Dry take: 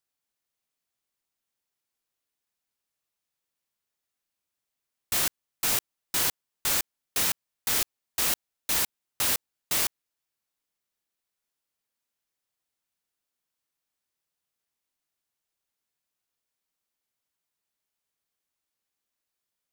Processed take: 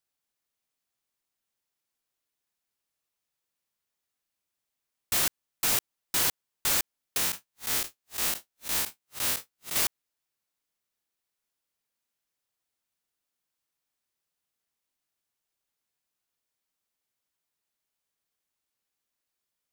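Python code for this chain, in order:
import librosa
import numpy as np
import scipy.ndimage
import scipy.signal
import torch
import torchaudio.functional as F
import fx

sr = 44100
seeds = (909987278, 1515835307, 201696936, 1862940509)

y = fx.spec_blur(x, sr, span_ms=90.0, at=(7.17, 9.76))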